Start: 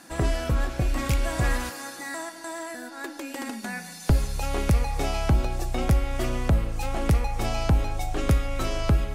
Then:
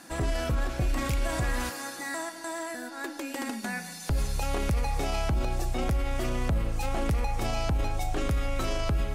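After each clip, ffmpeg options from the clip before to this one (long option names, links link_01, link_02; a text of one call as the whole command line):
ffmpeg -i in.wav -af "alimiter=limit=-20dB:level=0:latency=1:release=18" out.wav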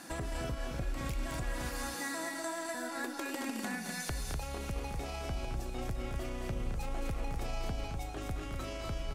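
ffmpeg -i in.wav -filter_complex "[0:a]acompressor=threshold=-36dB:ratio=6,asplit=2[link_01][link_02];[link_02]aecho=0:1:215.7|247.8:0.447|0.562[link_03];[link_01][link_03]amix=inputs=2:normalize=0" out.wav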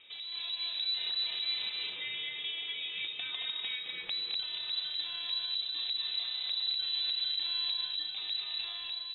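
ffmpeg -i in.wav -af "lowpass=frequency=3400:width_type=q:width=0.5098,lowpass=frequency=3400:width_type=q:width=0.6013,lowpass=frequency=3400:width_type=q:width=0.9,lowpass=frequency=3400:width_type=q:width=2.563,afreqshift=-4000,equalizer=frequency=1400:width=2.2:gain=-8.5,dynaudnorm=framelen=130:gausssize=7:maxgain=7dB,volume=-5.5dB" out.wav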